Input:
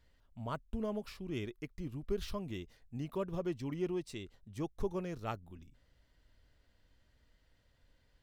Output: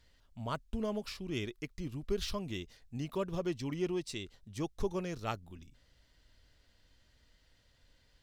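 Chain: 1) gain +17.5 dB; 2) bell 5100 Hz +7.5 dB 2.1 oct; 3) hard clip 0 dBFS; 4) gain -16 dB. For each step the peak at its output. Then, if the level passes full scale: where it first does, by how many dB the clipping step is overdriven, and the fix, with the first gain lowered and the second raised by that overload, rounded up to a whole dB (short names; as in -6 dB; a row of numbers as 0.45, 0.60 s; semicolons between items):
-5.0, -4.5, -4.5, -20.5 dBFS; no overload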